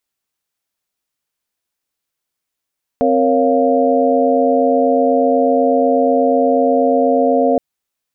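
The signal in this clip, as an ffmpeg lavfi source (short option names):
-f lavfi -i "aevalsrc='0.158*(sin(2*PI*261.63*t)+sin(2*PI*466.16*t)+sin(2*PI*554.37*t)+sin(2*PI*698.46*t))':d=4.57:s=44100"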